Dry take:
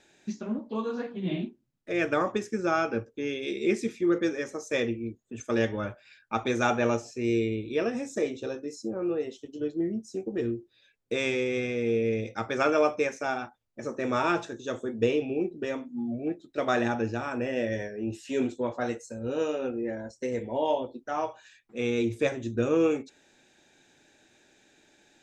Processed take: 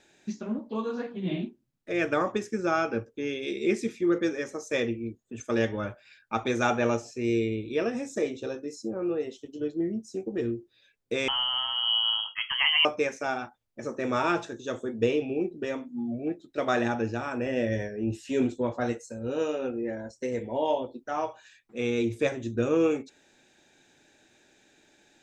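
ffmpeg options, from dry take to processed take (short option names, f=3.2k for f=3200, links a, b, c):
-filter_complex "[0:a]asettb=1/sr,asplit=3[a][b][c];[a]atrim=end=11.284[d];[b]atrim=start=11.28:end=12.85,asetpts=PTS-STARTPTS,afade=t=in:d=0.004:c=qsin,afade=t=out:st=1.566:d=0.004:c=qsin,lowpass=f=2.9k:t=q:w=0.5098,lowpass=f=2.9k:t=q:w=0.6013,lowpass=f=2.9k:t=q:w=0.9,lowpass=f=2.9k:t=q:w=2.563,afreqshift=-3400[e];[c]atrim=start=12.846[f];[d][e]acrossfade=d=0.004:c1=hsin:c2=qsin[g];[g][f]acrossfade=d=0.004:c1=qsin:c2=hsin,asettb=1/sr,asplit=3[h][i][j];[h]atrim=end=17.464[k];[i]atrim=start=17.46:end=18.93,asetpts=PTS-STARTPTS,afade=t=in:d=0.004:c=qsin,afade=t=out:st=1.466:d=0.004:c=qsin,lowshelf=f=190:g=7.5[l];[j]atrim=start=18.926[m];[k][l]acrossfade=d=0.004:c1=hsin:c2=qsin[n];[n][m]acrossfade=d=0.004:c1=qsin:c2=hsin"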